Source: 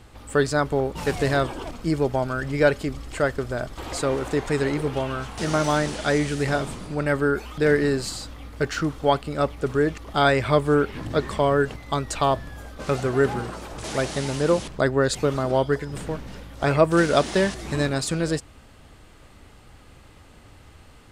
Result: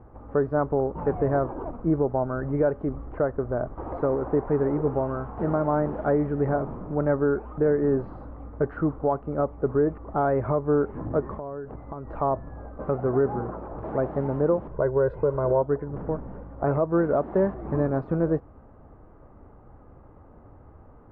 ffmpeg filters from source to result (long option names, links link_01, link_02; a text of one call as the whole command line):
ffmpeg -i in.wav -filter_complex "[0:a]asettb=1/sr,asplit=3[link_01][link_02][link_03];[link_01]atrim=end=11.344[link_04];[link_02]atrim=start=11.34:end=12.08,asetpts=PTS-STARTPTS,afade=type=in:duration=0.004:curve=qsin,afade=type=out:start_time=0.736:duration=0.004:curve=qsin,acompressor=threshold=-31dB:ratio=20:attack=3.2:release=140:knee=1:detection=peak[link_05];[link_03]atrim=start=12.076[link_06];[link_04][link_05]acrossfade=duration=0.004:curve1=hsin:curve2=qsin[link_07];[link_07][link_06]acrossfade=duration=0.004:curve1=qsin:curve2=hsin,asettb=1/sr,asplit=3[link_08][link_09][link_10];[link_08]atrim=end=14.714[link_11];[link_09]atrim=start=14.71:end=15.62,asetpts=PTS-STARTPTS,afade=type=in:duration=0.004:curve=qsin,afade=type=out:start_time=0.906:duration=0.004:curve=qsin,aecho=1:1:2:0.67,atrim=end_sample=40131[link_12];[link_10]atrim=start=15.616[link_13];[link_11][link_12]acrossfade=duration=0.004:curve1=hsin:curve2=qsin[link_14];[link_14][link_13]acrossfade=duration=0.004:curve1=qsin:curve2=hsin,lowpass=frequency=1200:width=0.5412,lowpass=frequency=1200:width=1.3066,equalizer=frequency=500:width=0.62:gain=3,alimiter=limit=-12.5dB:level=0:latency=1:release=257,volume=-1dB" out.wav